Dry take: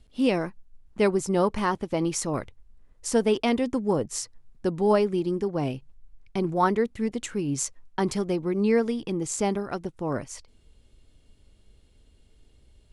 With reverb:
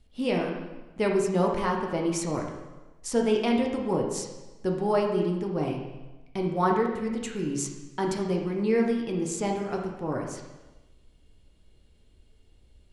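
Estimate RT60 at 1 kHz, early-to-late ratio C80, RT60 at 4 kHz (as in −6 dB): 1.1 s, 6.5 dB, 1.0 s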